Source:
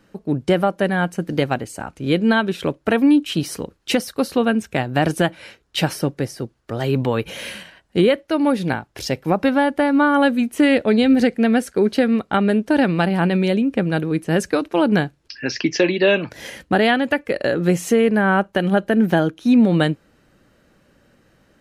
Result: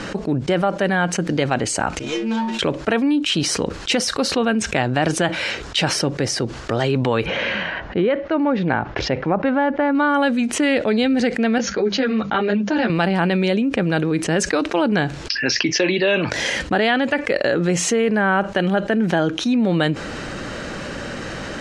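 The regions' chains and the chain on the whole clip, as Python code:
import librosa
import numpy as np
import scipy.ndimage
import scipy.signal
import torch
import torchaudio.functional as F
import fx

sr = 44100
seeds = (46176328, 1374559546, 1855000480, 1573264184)

y = fx.chain(x, sr, fx.low_shelf(hz=330.0, db=-10.5),
    fx.stiff_resonator(f0_hz=110.0, decay_s=0.54, stiffness=0.008),
    fx.running_max(window=5), at=(1.99, 2.59))
y = fx.chain(y, sr, fx.lowpass(hz=2000.0, slope=12),
    fx.resample_bad(factor=3, down='none', up='filtered'), at=(7.26, 9.95))
y = fx.chain(y, sr, fx.brickwall_lowpass(high_hz=7100.0),
    fx.hum_notches(base_hz=50, count=4),
    fx.ensemble(), at=(11.58, 12.9))
y = scipy.signal.sosfilt(scipy.signal.butter(4, 7900.0, 'lowpass', fs=sr, output='sos'), y)
y = fx.low_shelf(y, sr, hz=400.0, db=-5.5)
y = fx.env_flatten(y, sr, amount_pct=70)
y = F.gain(torch.from_numpy(y), -1.5).numpy()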